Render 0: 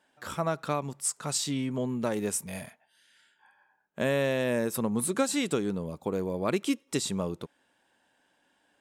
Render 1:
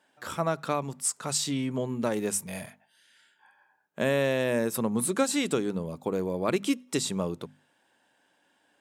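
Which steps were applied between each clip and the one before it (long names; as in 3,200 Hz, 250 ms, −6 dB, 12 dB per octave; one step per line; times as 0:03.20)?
high-pass filter 83 Hz
mains-hum notches 50/100/150/200/250 Hz
level +1.5 dB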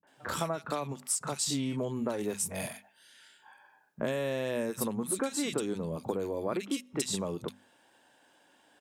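downward compressor, threshold −34 dBFS, peak gain reduction 13.5 dB
three-band delay without the direct sound lows, mids, highs 30/70 ms, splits 170/1,900 Hz
level +5.5 dB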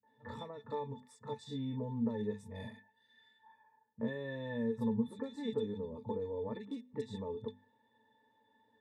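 resonances in every octave A, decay 0.11 s
level +4.5 dB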